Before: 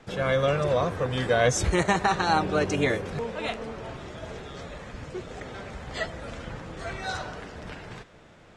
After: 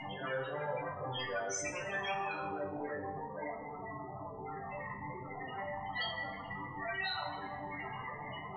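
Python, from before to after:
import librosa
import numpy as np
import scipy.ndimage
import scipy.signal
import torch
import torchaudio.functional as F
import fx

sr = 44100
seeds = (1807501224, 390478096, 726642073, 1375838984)

y = fx.delta_mod(x, sr, bps=64000, step_db=-30.0)
y = fx.echo_thinned(y, sr, ms=162, feedback_pct=69, hz=230.0, wet_db=-13)
y = fx.power_curve(y, sr, exponent=0.35)
y = y + 0.39 * np.pad(y, (int(1.0 * sr / 1000.0), 0))[:len(y)]
y = (np.mod(10.0 ** (11.0 / 20.0) * y + 1.0, 2.0) - 1.0) / 10.0 ** (11.0 / 20.0)
y = fx.high_shelf(y, sr, hz=2500.0, db=-5.0, at=(2.17, 4.43))
y = fx.spec_topn(y, sr, count=16)
y = scipy.signal.sosfilt(scipy.signal.butter(2, 4800.0, 'lowpass', fs=sr, output='sos'), y)
y = fx.tilt_eq(y, sr, slope=4.5)
y = fx.resonator_bank(y, sr, root=43, chord='sus4', decay_s=0.33)
y = fx.rev_plate(y, sr, seeds[0], rt60_s=1.0, hf_ratio=0.9, predelay_ms=0, drr_db=5.0)
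y = y * 10.0 ** (-3.5 / 20.0)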